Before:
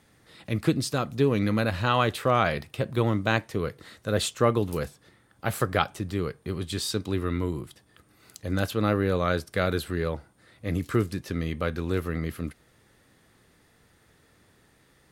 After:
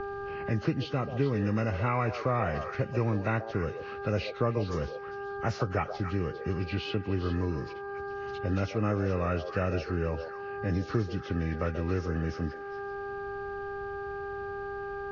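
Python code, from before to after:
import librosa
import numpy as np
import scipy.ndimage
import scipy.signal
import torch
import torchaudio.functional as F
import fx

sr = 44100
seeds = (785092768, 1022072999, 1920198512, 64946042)

p1 = fx.freq_compress(x, sr, knee_hz=1200.0, ratio=1.5)
p2 = fx.dmg_buzz(p1, sr, base_hz=400.0, harmonics=4, level_db=-41.0, tilt_db=-5, odd_only=False)
p3 = p2 + fx.echo_stepped(p2, sr, ms=134, hz=570.0, octaves=1.4, feedback_pct=70, wet_db=-7, dry=0)
p4 = fx.env_lowpass(p3, sr, base_hz=2600.0, full_db=-20.5)
p5 = fx.low_shelf(p4, sr, hz=75.0, db=10.5)
p6 = fx.band_squash(p5, sr, depth_pct=70)
y = F.gain(torch.from_numpy(p6), -5.0).numpy()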